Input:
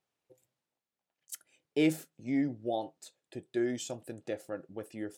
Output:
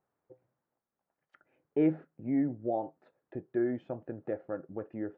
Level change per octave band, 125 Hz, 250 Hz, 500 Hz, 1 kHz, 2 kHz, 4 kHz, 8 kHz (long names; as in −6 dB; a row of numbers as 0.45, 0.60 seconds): +1.5 dB, +1.0 dB, +1.5 dB, +1.5 dB, −7.0 dB, below −20 dB, below −35 dB